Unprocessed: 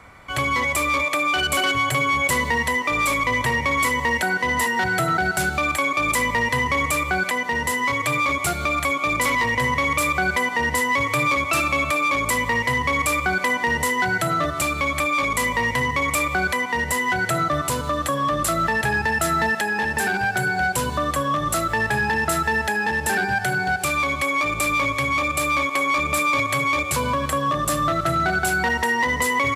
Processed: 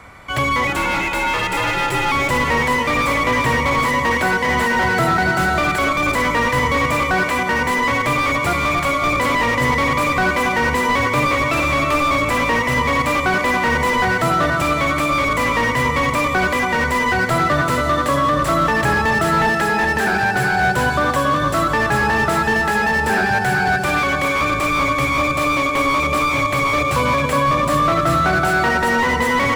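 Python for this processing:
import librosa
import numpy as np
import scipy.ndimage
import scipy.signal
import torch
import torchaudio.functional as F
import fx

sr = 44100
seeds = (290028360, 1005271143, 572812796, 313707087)

y = fx.ring_mod(x, sr, carrier_hz=260.0, at=(0.67, 2.12))
y = fx.echo_split(y, sr, split_hz=1200.0, low_ms=278, high_ms=395, feedback_pct=52, wet_db=-6)
y = fx.slew_limit(y, sr, full_power_hz=140.0)
y = y * librosa.db_to_amplitude(5.0)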